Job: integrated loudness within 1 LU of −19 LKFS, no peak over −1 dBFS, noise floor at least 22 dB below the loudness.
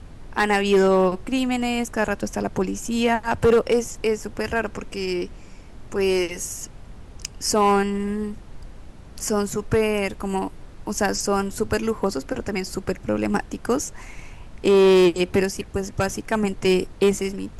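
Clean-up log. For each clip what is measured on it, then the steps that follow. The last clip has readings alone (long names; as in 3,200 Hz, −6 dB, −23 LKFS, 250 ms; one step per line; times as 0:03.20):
share of clipped samples 0.9%; peaks flattened at −11.5 dBFS; background noise floor −42 dBFS; target noise floor −45 dBFS; integrated loudness −22.5 LKFS; sample peak −11.5 dBFS; target loudness −19.0 LKFS
→ clipped peaks rebuilt −11.5 dBFS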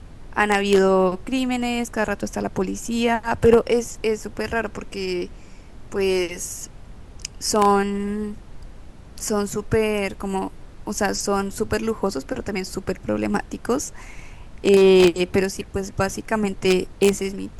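share of clipped samples 0.0%; background noise floor −42 dBFS; target noise floor −44 dBFS
→ noise reduction from a noise print 6 dB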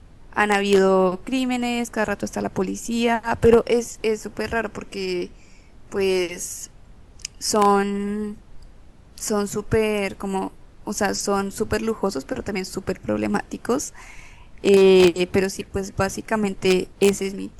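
background noise floor −47 dBFS; integrated loudness −22.0 LKFS; sample peak −2.5 dBFS; target loudness −19.0 LKFS
→ level +3 dB
brickwall limiter −1 dBFS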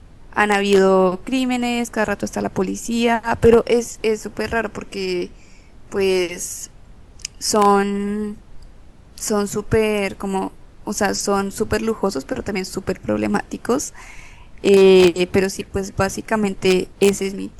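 integrated loudness −19.0 LKFS; sample peak −1.0 dBFS; background noise floor −44 dBFS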